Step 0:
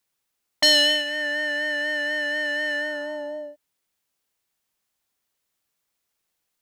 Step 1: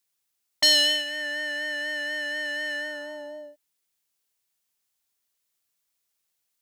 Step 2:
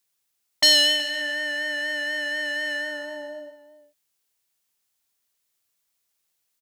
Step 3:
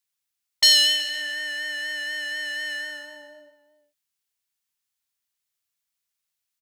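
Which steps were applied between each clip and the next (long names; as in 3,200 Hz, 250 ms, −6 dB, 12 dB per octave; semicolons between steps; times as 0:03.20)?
high-shelf EQ 2,700 Hz +8.5 dB; level −7 dB
slap from a distant wall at 64 metres, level −15 dB; level +2.5 dB
guitar amp tone stack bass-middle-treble 5-5-5; one half of a high-frequency compander decoder only; level +8 dB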